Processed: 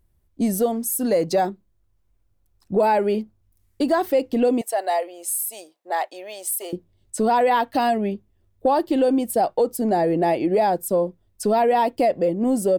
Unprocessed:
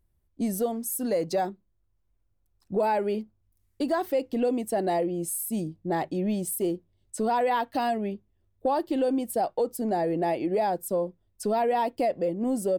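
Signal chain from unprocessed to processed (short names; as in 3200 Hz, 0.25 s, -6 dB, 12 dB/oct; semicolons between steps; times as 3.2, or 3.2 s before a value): 4.61–6.73 HPF 600 Hz 24 dB/oct; gain +6.5 dB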